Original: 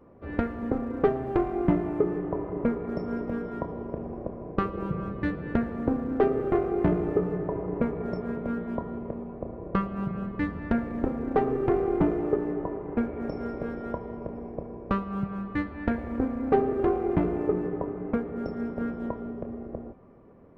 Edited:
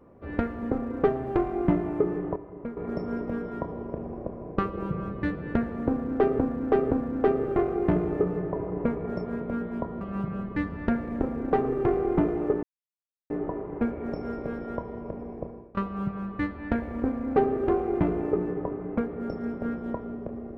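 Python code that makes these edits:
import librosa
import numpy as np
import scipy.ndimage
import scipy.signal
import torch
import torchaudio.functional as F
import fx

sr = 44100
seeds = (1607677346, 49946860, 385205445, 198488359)

y = fx.edit(x, sr, fx.clip_gain(start_s=2.36, length_s=0.41, db=-10.0),
    fx.repeat(start_s=5.87, length_s=0.52, count=3),
    fx.cut(start_s=8.97, length_s=0.87),
    fx.insert_silence(at_s=12.46, length_s=0.67),
    fx.fade_out_to(start_s=14.6, length_s=0.33, floor_db=-21.0), tone=tone)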